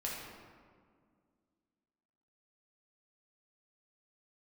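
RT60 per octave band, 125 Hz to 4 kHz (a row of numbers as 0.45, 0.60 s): 2.3, 2.8, 2.1, 1.8, 1.4, 1.0 s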